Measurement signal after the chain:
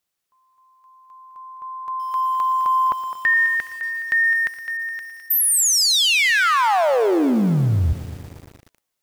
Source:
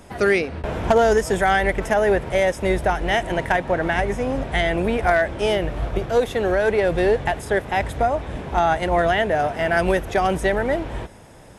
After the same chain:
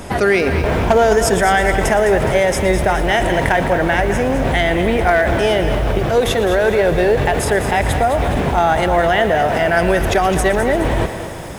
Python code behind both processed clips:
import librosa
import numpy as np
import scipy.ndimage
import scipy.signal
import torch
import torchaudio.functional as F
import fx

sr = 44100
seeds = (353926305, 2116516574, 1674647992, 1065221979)

p1 = fx.over_compress(x, sr, threshold_db=-30.0, ratio=-1.0)
p2 = x + (p1 * librosa.db_to_amplitude(1.0))
p3 = fx.echo_thinned(p2, sr, ms=209, feedback_pct=47, hz=380.0, wet_db=-10)
p4 = fx.echo_crushed(p3, sr, ms=116, feedback_pct=80, bits=6, wet_db=-15)
y = p4 * librosa.db_to_amplitude(2.5)